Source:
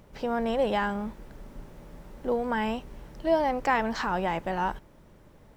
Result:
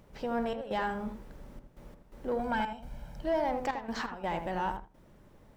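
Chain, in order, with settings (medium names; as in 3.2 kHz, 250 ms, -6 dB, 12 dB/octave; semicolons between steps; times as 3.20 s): 2.39–3.21 s: comb 1.3 ms, depth 75%; saturation -18.5 dBFS, distortion -18 dB; trance gate "xxx.xxxxx.x." 85 bpm -12 dB; on a send: filtered feedback delay 81 ms, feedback 17%, low-pass 1.2 kHz, level -5.5 dB; on the sum: trim -4 dB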